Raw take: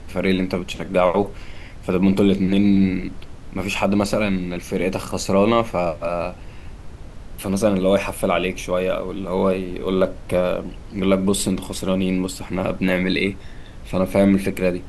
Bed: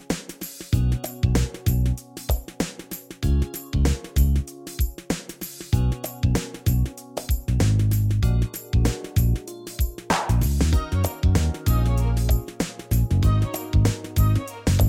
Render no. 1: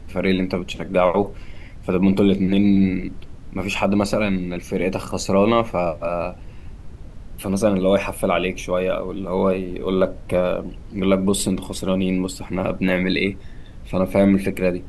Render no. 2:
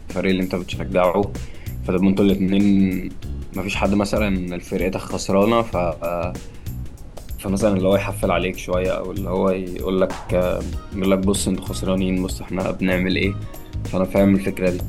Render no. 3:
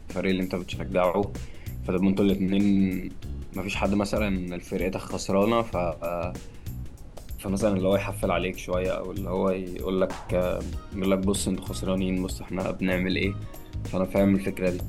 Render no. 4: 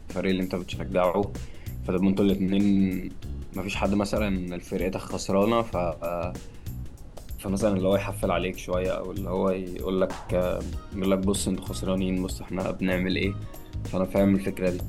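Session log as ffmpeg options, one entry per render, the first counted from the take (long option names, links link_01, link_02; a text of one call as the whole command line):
ffmpeg -i in.wav -af "afftdn=noise_reduction=6:noise_floor=-38" out.wav
ffmpeg -i in.wav -i bed.wav -filter_complex "[1:a]volume=-10dB[link_01];[0:a][link_01]amix=inputs=2:normalize=0" out.wav
ffmpeg -i in.wav -af "volume=-6dB" out.wav
ffmpeg -i in.wav -af "equalizer=frequency=2300:width=7:gain=-3.5" out.wav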